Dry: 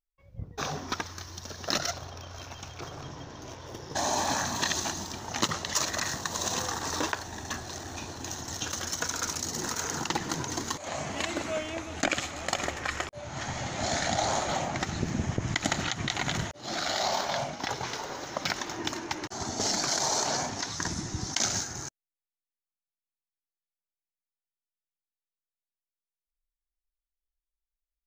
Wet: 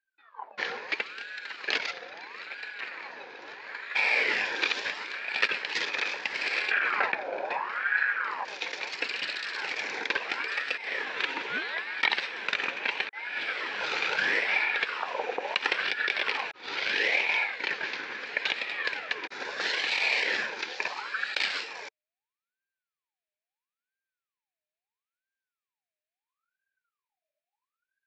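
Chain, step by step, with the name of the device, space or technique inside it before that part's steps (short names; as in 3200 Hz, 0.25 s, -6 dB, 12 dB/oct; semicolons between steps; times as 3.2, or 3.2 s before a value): 6.71–8.45 tilt -4 dB/oct; voice changer toy (ring modulator with a swept carrier 1100 Hz, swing 45%, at 0.75 Hz; speaker cabinet 410–4200 Hz, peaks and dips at 440 Hz +4 dB, 680 Hz -5 dB, 1200 Hz -6 dB, 1700 Hz +7 dB, 2400 Hz +9 dB, 4000 Hz +4 dB); gain +2 dB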